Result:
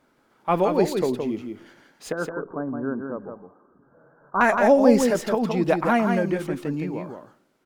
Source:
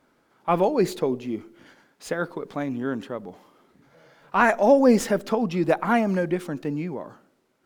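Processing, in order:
0:02.12–0:04.41: Chebyshev low-pass with heavy ripple 1,600 Hz, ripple 3 dB
single-tap delay 168 ms −5.5 dB

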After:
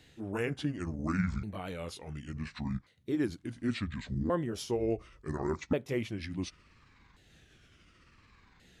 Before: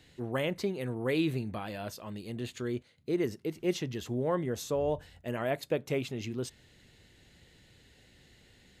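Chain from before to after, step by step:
pitch shifter swept by a sawtooth −11.5 semitones, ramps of 1,433 ms

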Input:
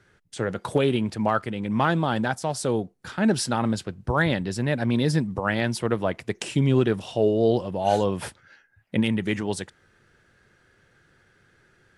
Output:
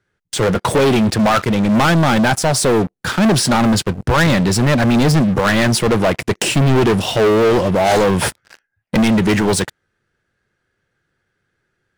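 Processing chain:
de-essing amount 55%
leveller curve on the samples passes 5

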